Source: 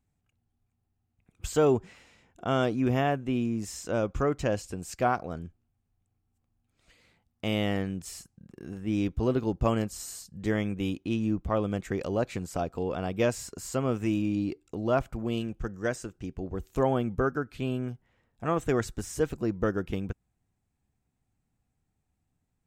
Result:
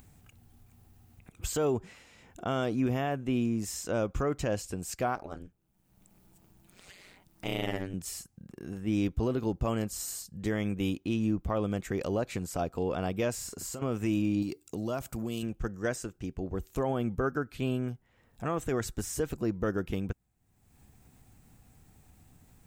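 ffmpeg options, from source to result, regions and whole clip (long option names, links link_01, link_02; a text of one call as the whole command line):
ffmpeg -i in.wav -filter_complex "[0:a]asettb=1/sr,asplit=3[link_01][link_02][link_03];[link_01]atrim=end=5.154[link_04];[link_02]atrim=start=5.15:end=7.94,asetpts=PTS-STARTPTS,afade=type=in:duration=0.004:curve=qsin,afade=type=out:start_time=2.786:duration=0.004:curve=qsin,lowshelf=frequency=170:gain=-6.5,aeval=exprs='val(0)*sin(2*PI*92*n/s)':channel_layout=same[link_05];[link_03]atrim=start=7.936[link_06];[link_04][link_05]acrossfade=duration=0.004:curve1=hsin:curve2=qsin[link_07];[link_07][link_06]acrossfade=duration=0.004:curve1=qsin:curve2=hsin,asettb=1/sr,asplit=3[link_08][link_09][link_10];[link_08]atrim=end=13.344[link_11];[link_09]atrim=start=13.34:end=13.82,asetpts=PTS-STARTPTS,afade=type=in:duration=0.004:curve=qsin,afade=type=out:start_time=0.476:duration=0.004:curve=qsin,asplit=2[link_12][link_13];[link_13]adelay=43,volume=-7dB[link_14];[link_12][link_14]amix=inputs=2:normalize=0,atrim=end_sample=21168,acompressor=threshold=-37dB:ratio=5:attack=3.2:release=140:knee=1:detection=peak[link_15];[link_10]atrim=start=13.816[link_16];[link_11][link_15]acrossfade=duration=0.004:curve1=hsin:curve2=qsin[link_17];[link_17][link_16]acrossfade=duration=0.004:curve1=qsin:curve2=hsin,asettb=1/sr,asplit=3[link_18][link_19][link_20];[link_18]atrim=end=14.424[link_21];[link_19]atrim=start=14.42:end=15.43,asetpts=PTS-STARTPTS,afade=type=in:duration=0.004:curve=qsin,afade=type=out:start_time=1.006:duration=0.004:curve=qsin,highpass=frequency=150:poles=1,bass=frequency=250:gain=5,treble=frequency=4000:gain=12,acompressor=threshold=-30dB:ratio=4:attack=3.2:release=140:knee=1:detection=peak[link_22];[link_20]atrim=start=15.426[link_23];[link_21][link_22]acrossfade=duration=0.004:curve1=hsin:curve2=qsin[link_24];[link_24][link_23]acrossfade=duration=0.004:curve1=qsin:curve2=hsin,highshelf=frequency=11000:gain=9.5,acompressor=mode=upward:threshold=-41dB:ratio=2.5,alimiter=limit=-19.5dB:level=0:latency=1:release=68" out.wav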